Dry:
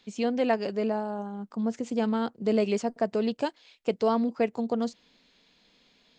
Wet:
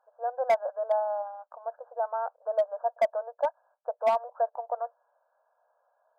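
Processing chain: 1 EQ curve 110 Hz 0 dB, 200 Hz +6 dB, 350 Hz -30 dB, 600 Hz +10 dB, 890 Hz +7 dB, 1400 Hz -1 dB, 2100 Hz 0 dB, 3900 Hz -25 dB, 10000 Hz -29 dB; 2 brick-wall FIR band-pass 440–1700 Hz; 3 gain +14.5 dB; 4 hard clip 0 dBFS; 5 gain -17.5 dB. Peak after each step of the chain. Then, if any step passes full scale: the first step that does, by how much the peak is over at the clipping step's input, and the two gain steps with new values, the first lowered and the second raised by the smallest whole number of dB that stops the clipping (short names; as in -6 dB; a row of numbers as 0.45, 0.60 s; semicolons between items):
-8.0, -8.0, +6.5, 0.0, -17.5 dBFS; step 3, 6.5 dB; step 3 +7.5 dB, step 5 -10.5 dB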